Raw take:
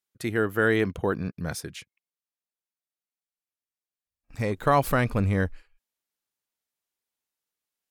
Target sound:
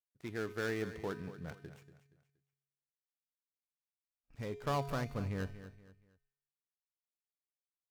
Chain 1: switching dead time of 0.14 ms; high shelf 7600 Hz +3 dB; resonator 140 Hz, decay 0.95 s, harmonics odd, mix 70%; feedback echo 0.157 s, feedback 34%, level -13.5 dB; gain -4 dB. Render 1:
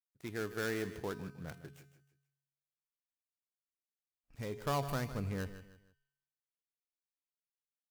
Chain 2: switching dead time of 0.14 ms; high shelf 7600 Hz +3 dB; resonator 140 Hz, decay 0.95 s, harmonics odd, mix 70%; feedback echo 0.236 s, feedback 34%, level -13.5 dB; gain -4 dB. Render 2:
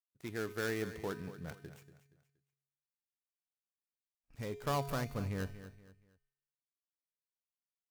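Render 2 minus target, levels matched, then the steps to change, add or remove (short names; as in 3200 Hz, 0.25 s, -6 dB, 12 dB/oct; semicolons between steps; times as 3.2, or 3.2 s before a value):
8000 Hz band +4.5 dB
change: high shelf 7600 Hz -7.5 dB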